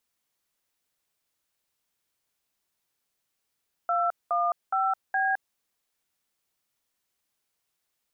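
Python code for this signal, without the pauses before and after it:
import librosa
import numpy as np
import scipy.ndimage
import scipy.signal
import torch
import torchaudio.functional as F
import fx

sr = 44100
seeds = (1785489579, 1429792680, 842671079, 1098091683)

y = fx.dtmf(sr, digits='215B', tone_ms=213, gap_ms=204, level_db=-25.0)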